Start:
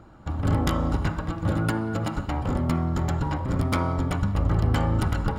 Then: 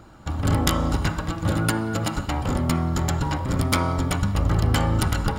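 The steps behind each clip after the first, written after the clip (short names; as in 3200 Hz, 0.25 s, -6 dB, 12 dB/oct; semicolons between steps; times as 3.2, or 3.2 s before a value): high shelf 2800 Hz +11.5 dB; gain +1.5 dB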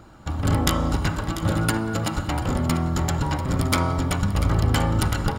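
echo 0.692 s -12.5 dB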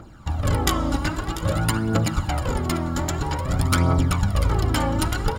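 phaser 0.51 Hz, delay 3.7 ms, feedback 54%; gain -1 dB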